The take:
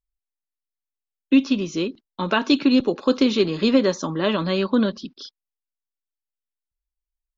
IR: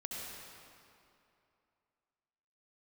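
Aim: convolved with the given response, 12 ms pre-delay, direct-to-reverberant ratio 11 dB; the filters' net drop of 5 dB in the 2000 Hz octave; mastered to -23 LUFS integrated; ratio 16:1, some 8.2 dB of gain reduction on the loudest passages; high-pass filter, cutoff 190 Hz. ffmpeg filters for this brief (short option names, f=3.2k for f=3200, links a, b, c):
-filter_complex "[0:a]highpass=190,equalizer=f=2k:t=o:g=-7.5,acompressor=threshold=-21dB:ratio=16,asplit=2[a][b];[1:a]atrim=start_sample=2205,adelay=12[c];[b][c]afir=irnorm=-1:irlink=0,volume=-11.5dB[d];[a][d]amix=inputs=2:normalize=0,volume=4.5dB"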